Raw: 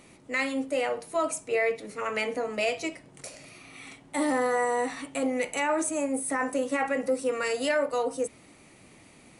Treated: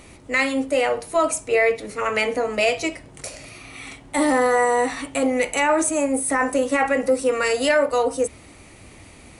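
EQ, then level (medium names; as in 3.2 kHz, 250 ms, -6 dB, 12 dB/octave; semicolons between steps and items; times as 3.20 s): resonant low shelf 110 Hz +9 dB, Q 1.5; +8.0 dB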